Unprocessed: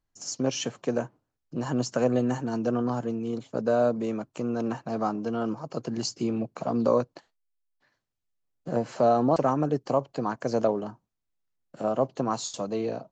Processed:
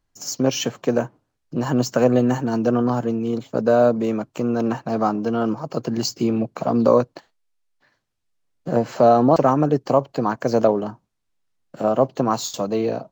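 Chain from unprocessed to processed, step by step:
linearly interpolated sample-rate reduction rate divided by 2×
level +7.5 dB

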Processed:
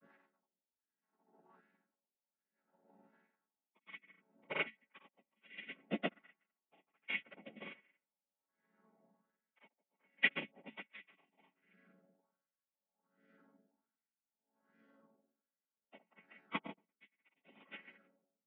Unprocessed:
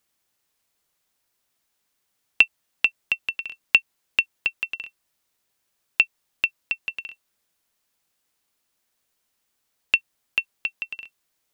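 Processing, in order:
channel vocoder with a chord as carrier minor triad, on F#3
high-shelf EQ 4,800 Hz −8 dB
time stretch by phase vocoder 1.6×
downward compressor 4 to 1, threshold −33 dBFS, peak gain reduction 18 dB
on a send: delay with a low-pass on its return 176 ms, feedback 40%, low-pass 1,700 Hz, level −19 dB
on the sum: rotating-speaker cabinet horn 8 Hz, later 0.65 Hz, at 0:02.28
granular cloud, pitch spread up and down by 0 semitones
auto-filter low-pass sine 1.3 Hz 740–1,900 Hz
tremolo with a sine in dB 0.67 Hz, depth 39 dB
level +15.5 dB

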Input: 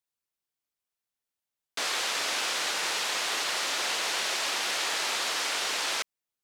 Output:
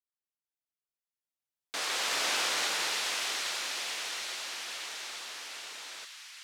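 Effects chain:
source passing by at 0:02.35, 7 m/s, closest 3.3 metres
delay with a high-pass on its return 830 ms, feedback 52%, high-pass 1,700 Hz, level −4.5 dB

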